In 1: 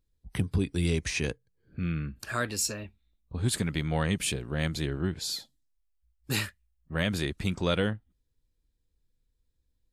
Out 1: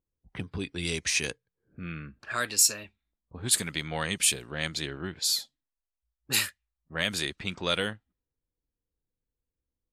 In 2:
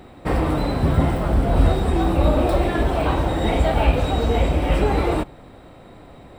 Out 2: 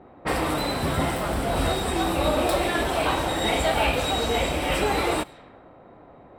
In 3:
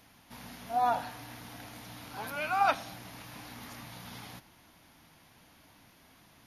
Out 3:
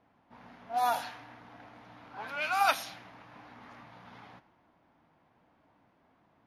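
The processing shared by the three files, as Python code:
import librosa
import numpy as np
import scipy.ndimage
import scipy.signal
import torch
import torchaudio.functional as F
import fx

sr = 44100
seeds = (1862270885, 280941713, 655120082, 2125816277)

y = fx.tilt_eq(x, sr, slope=3.0)
y = fx.env_lowpass(y, sr, base_hz=750.0, full_db=-24.5)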